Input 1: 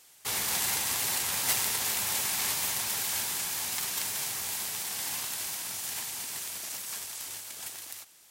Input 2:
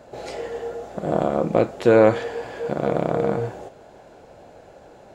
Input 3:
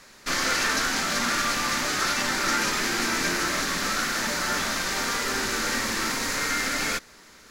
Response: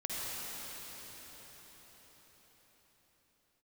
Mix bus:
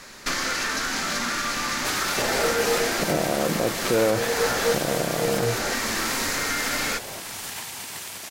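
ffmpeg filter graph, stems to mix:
-filter_complex "[0:a]highshelf=f=4.5k:g=-9.5,alimiter=level_in=2.5dB:limit=-24dB:level=0:latency=1:release=462,volume=-2.5dB,adelay=1600,volume=2.5dB[a];[1:a]alimiter=limit=-10dB:level=0:latency=1,adelay=2050,volume=1dB[b];[2:a]acompressor=threshold=-31dB:ratio=6,volume=2dB[c];[b][c]amix=inputs=2:normalize=0,alimiter=limit=-16.5dB:level=0:latency=1:release=328,volume=0dB[d];[a][d]amix=inputs=2:normalize=0,acontrast=26"

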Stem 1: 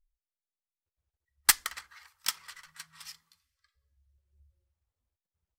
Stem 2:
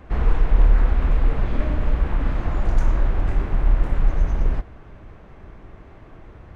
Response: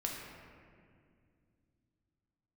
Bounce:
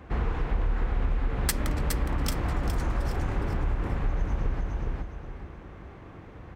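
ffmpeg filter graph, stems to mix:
-filter_complex "[0:a]volume=-2dB,asplit=2[a][b];[b]volume=-9dB[c];[1:a]highpass=50,bandreject=f=630:w=12,volume=-1dB,asplit=2[d][e];[e]volume=-5dB[f];[c][f]amix=inputs=2:normalize=0,aecho=0:1:414|828|1242|1656:1|0.29|0.0841|0.0244[g];[a][d][g]amix=inputs=3:normalize=0,acompressor=threshold=-23dB:ratio=4"

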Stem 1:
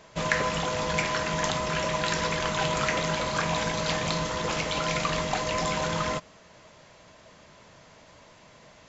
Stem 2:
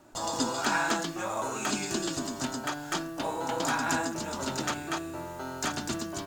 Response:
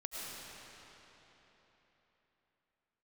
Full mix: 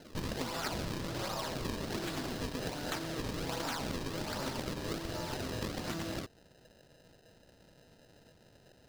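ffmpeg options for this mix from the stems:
-filter_complex "[0:a]acrusher=samples=39:mix=1:aa=0.000001,volume=-8.5dB[a];[1:a]acrusher=samples=36:mix=1:aa=0.000001:lfo=1:lforange=57.6:lforate=1.3,volume=0.5dB,asplit=2[b][c];[c]volume=-10dB[d];[2:a]atrim=start_sample=2205[e];[d][e]afir=irnorm=-1:irlink=0[f];[a][b][f]amix=inputs=3:normalize=0,equalizer=f=4.6k:w=1.3:g=7.5,acompressor=threshold=-35dB:ratio=5"

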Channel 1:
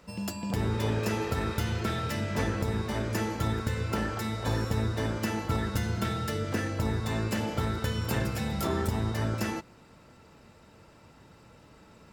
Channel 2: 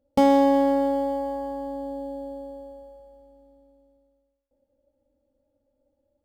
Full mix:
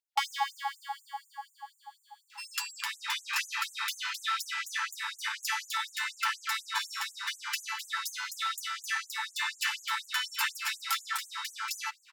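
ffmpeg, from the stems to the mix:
-filter_complex "[0:a]adelay=2300,volume=2.5dB[a];[1:a]volume=-1.5dB[b];[a][b]amix=inputs=2:normalize=0,equalizer=f=2.5k:w=0.5:g=7,afftfilt=real='re*gte(b*sr/1024,780*pow(6400/780,0.5+0.5*sin(2*PI*4.1*pts/sr)))':imag='im*gte(b*sr/1024,780*pow(6400/780,0.5+0.5*sin(2*PI*4.1*pts/sr)))':win_size=1024:overlap=0.75"

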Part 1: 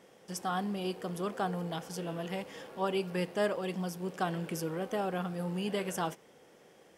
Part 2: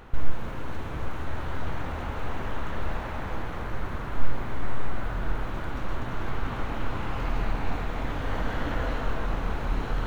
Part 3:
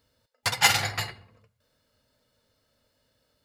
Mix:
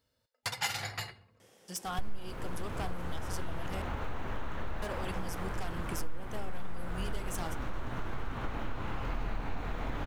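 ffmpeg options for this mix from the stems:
-filter_complex "[0:a]equalizer=f=9.6k:t=o:w=2.8:g=9,aeval=exprs='0.0562*(abs(mod(val(0)/0.0562+3,4)-2)-1)':c=same,adelay=1400,volume=-4.5dB,asplit=3[a][b][c];[a]atrim=end=3.82,asetpts=PTS-STARTPTS,afade=t=out:st=3.816:d=0.004:c=hsin[d];[b]atrim=start=3.82:end=4.82,asetpts=PTS-STARTPTS,volume=0[e];[c]atrim=start=4.82,asetpts=PTS-STARTPTS,afade=t=in:d=0.004:c=hsin[f];[d][e][f]concat=n=3:v=0:a=1[g];[1:a]adelay=1850,volume=-2dB[h];[2:a]volume=-7.5dB[i];[g][h][i]amix=inputs=3:normalize=0,acompressor=threshold=-31dB:ratio=3"

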